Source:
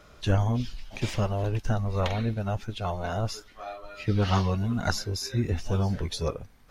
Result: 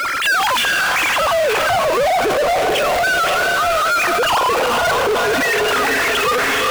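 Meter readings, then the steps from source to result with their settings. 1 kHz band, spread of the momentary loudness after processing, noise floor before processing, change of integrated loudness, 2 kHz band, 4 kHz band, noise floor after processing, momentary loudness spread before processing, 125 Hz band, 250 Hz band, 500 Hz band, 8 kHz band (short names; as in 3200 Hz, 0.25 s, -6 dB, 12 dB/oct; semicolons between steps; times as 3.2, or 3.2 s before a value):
+19.5 dB, 1 LU, -54 dBFS, +13.5 dB, +24.5 dB, +18.0 dB, -17 dBFS, 9 LU, -10.5 dB, +2.0 dB, +16.0 dB, +17.0 dB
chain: sine-wave speech; in parallel at -11 dB: requantised 6-bit, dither none; on the sum: HPF 330 Hz 24 dB/oct; LFO high-pass saw down 0.37 Hz 480–1900 Hz; overloaded stage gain 21.5 dB; bell 500 Hz +8 dB 0.41 oct; on a send: diffused feedback echo 0.466 s, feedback 40%, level -7 dB; on the sum: power-law curve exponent 0.35; transient shaper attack -9 dB, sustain +11 dB; limiter -20.5 dBFS, peak gain reduction 9 dB; gain +7.5 dB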